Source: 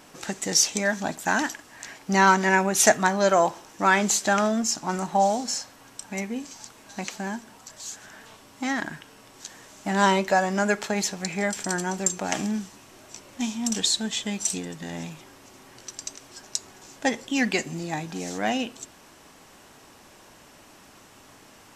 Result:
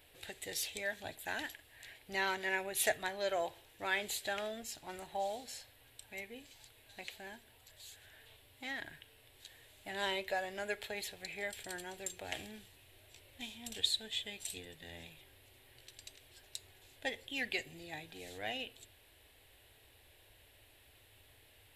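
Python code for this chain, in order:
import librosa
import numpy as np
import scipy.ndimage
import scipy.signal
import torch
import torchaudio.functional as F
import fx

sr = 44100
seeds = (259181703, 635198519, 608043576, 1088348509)

y = fx.curve_eq(x, sr, hz=(100.0, 190.0, 450.0, 720.0, 1200.0, 1800.0, 3800.0, 5900.0, 11000.0), db=(0, -25, -10, -13, -22, -8, -3, -23, -2))
y = F.gain(torch.from_numpy(y), -3.0).numpy()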